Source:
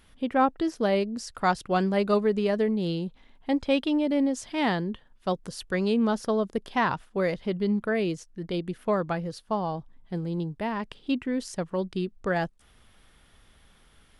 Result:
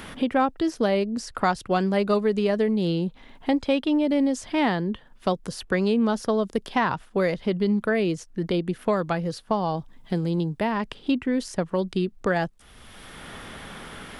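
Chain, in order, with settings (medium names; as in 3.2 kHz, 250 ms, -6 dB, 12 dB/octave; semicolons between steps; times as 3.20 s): three bands compressed up and down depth 70%; trim +2.5 dB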